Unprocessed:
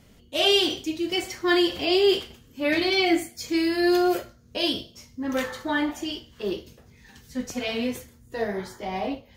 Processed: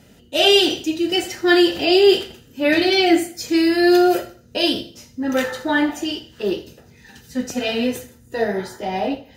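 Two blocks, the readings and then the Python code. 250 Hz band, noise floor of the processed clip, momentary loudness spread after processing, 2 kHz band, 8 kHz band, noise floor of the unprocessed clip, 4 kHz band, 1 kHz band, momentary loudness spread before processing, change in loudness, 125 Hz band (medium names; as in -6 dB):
+7.0 dB, -50 dBFS, 14 LU, +6.0 dB, +6.0 dB, -55 dBFS, +5.5 dB, +6.5 dB, 13 LU, +6.5 dB, +4.5 dB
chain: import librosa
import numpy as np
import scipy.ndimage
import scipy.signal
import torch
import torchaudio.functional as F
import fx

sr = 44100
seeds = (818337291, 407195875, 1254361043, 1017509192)

p1 = fx.notch_comb(x, sr, f0_hz=1100.0)
p2 = p1 + fx.echo_feedback(p1, sr, ms=82, feedback_pct=33, wet_db=-18.0, dry=0)
y = p2 * librosa.db_to_amplitude(7.0)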